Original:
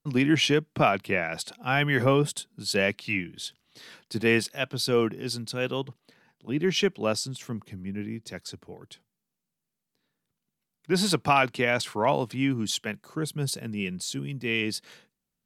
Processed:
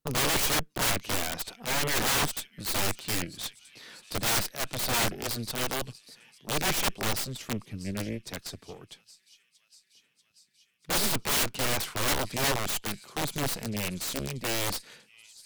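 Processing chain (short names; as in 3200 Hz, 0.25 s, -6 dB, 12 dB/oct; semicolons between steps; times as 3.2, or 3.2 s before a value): thin delay 0.639 s, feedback 74%, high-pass 4400 Hz, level -17 dB; added harmonics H 3 -18 dB, 6 -19 dB, 8 -11 dB, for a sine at -7.5 dBFS; wrapped overs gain 25 dB; gain +3.5 dB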